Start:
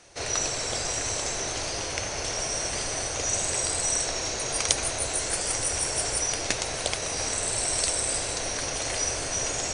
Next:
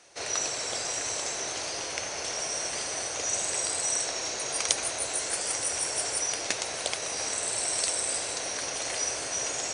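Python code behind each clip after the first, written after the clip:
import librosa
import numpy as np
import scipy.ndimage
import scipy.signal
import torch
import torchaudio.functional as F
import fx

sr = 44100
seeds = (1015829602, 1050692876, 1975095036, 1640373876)

y = fx.highpass(x, sr, hz=340.0, slope=6)
y = y * librosa.db_to_amplitude(-2.0)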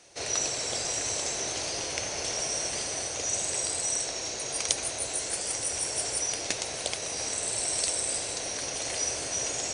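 y = fx.low_shelf(x, sr, hz=170.0, db=6.0)
y = fx.rider(y, sr, range_db=10, speed_s=2.0)
y = fx.peak_eq(y, sr, hz=1300.0, db=-5.0, octaves=1.4)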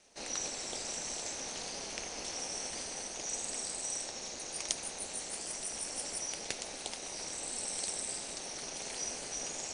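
y = x * np.sin(2.0 * np.pi * 130.0 * np.arange(len(x)) / sr)
y = y * librosa.db_to_amplitude(-5.5)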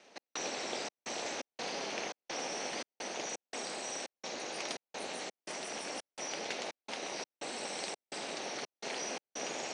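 y = 10.0 ** (-29.5 / 20.0) * np.tanh(x / 10.0 ** (-29.5 / 20.0))
y = fx.step_gate(y, sr, bpm=85, pattern='x.xxx.xx.xx', floor_db=-60.0, edge_ms=4.5)
y = fx.bandpass_edges(y, sr, low_hz=220.0, high_hz=3500.0)
y = y * librosa.db_to_amplitude(7.5)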